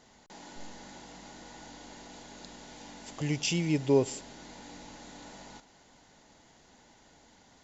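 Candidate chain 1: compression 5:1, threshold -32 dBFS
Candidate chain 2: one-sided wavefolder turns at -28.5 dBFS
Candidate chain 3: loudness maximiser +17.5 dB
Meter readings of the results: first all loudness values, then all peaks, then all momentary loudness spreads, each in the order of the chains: -42.0 LUFS, -37.5 LUFS, -18.0 LUFS; -21.5 dBFS, -15.5 dBFS, -1.0 dBFS; 24 LU, 18 LU, 19 LU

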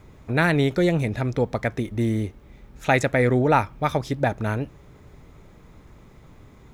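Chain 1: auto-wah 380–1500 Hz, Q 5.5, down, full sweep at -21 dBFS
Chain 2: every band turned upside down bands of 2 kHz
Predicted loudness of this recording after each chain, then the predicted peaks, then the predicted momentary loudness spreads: -32.5 LUFS, -21.0 LUFS; -17.0 dBFS, -5.5 dBFS; 13 LU, 7 LU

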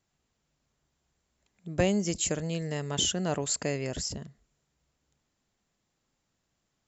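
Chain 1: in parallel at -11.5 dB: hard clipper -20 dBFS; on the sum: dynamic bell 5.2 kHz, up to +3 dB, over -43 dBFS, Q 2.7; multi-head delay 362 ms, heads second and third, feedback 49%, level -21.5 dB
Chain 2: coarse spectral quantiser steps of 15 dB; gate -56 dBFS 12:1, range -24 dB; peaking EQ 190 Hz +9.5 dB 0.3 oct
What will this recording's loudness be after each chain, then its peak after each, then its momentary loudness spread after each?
-27.5 LUFS, -28.0 LUFS; -11.0 dBFS, -11.0 dBFS; 21 LU, 13 LU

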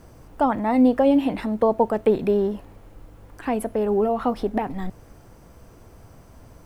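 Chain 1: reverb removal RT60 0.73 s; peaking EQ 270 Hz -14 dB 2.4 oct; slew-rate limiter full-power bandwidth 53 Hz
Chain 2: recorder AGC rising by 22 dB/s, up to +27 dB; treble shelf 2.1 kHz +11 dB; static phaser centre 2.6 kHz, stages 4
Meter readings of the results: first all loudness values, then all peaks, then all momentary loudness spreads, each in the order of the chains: -32.5 LUFS, -23.5 LUFS; -17.0 dBFS, -8.0 dBFS; 13 LU, 15 LU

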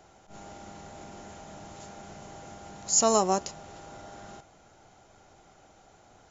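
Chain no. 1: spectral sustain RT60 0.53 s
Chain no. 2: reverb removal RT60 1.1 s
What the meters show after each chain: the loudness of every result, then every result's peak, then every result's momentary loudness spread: -22.5 LUFS, -25.0 LUFS; -6.5 dBFS, -10.0 dBFS; 22 LU, 13 LU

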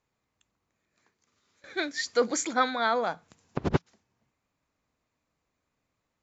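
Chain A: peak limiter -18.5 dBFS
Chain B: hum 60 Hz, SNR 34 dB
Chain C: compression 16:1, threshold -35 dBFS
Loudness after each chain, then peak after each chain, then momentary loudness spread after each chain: -31.5 LUFS, -29.0 LUFS, -40.5 LUFS; -18.5 dBFS, -9.0 dBFS, -18.0 dBFS; 9 LU, 10 LU, 8 LU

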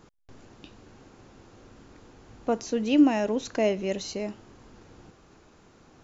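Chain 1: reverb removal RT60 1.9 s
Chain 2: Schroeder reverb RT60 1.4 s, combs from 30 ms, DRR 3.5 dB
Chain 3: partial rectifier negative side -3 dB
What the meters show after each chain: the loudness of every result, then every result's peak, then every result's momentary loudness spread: -27.5 LUFS, -24.0 LUFS, -27.5 LUFS; -10.5 dBFS, -7.5 dBFS, -10.0 dBFS; 15 LU, 17 LU, 14 LU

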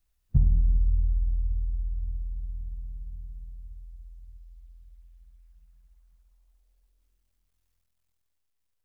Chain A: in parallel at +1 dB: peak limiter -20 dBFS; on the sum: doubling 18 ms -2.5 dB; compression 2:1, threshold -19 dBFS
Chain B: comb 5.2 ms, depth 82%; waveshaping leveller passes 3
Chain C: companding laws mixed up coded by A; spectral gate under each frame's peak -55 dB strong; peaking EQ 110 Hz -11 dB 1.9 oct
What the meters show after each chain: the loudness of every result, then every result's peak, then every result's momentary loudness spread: -27.0 LUFS, -22.0 LUFS, -34.0 LUFS; -11.0 dBFS, -10.0 dBFS, -17.0 dBFS; 20 LU, 19 LU, 21 LU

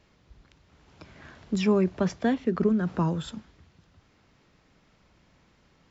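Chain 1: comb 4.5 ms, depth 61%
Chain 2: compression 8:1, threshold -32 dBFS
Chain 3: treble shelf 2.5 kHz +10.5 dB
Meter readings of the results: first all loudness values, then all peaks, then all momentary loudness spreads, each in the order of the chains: -23.5 LUFS, -38.0 LUFS, -26.0 LUFS; -8.5 dBFS, -21.5 dBFS, -12.0 dBFS; 11 LU, 14 LU, 12 LU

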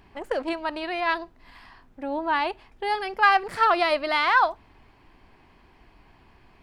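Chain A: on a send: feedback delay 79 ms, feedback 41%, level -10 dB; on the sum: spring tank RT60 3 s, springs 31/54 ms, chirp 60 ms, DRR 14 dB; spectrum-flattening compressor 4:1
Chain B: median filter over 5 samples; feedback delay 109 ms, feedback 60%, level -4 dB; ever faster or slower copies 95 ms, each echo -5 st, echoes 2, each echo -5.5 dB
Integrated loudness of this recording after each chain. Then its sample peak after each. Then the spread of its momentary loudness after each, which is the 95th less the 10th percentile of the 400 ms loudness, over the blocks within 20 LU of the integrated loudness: -24.5 LUFS, -23.0 LUFS; -7.5 dBFS, -5.0 dBFS; 12 LU, 11 LU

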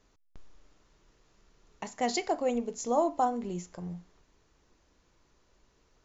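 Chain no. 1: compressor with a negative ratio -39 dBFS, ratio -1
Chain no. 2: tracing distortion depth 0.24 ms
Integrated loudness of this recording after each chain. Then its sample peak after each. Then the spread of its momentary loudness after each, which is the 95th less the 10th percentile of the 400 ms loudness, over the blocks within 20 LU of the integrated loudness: -38.5 LUFS, -32.0 LUFS; -22.0 dBFS, -14.0 dBFS; 20 LU, 15 LU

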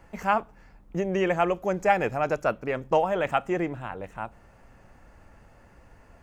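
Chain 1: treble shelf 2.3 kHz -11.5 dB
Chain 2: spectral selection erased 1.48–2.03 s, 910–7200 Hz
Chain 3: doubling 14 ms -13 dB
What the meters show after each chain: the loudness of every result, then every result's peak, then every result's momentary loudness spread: -28.0 LUFS, -27.0 LUFS, -26.5 LUFS; -10.0 dBFS, -10.0 dBFS, -7.0 dBFS; 13 LU, 12 LU, 13 LU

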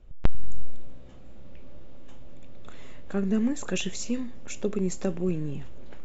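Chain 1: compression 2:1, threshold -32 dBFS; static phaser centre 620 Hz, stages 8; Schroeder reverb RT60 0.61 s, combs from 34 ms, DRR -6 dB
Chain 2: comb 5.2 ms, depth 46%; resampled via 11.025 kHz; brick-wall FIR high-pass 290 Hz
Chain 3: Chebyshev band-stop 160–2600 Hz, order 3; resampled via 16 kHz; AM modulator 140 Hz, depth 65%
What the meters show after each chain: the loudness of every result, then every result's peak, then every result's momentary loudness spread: -31.5 LUFS, -34.0 LUFS, -33.5 LUFS; -3.0 dBFS, -14.0 dBFS, -8.0 dBFS; 22 LU, 21 LU, 19 LU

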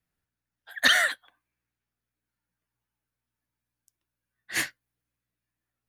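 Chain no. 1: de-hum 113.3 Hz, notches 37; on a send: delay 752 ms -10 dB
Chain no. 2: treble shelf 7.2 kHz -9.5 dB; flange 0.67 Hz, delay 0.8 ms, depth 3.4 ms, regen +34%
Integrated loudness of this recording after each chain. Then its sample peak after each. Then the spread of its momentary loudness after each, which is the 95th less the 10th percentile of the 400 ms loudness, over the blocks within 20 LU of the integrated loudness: -26.0 LUFS, -29.0 LUFS; -5.5 dBFS, -13.0 dBFS; 20 LU, 20 LU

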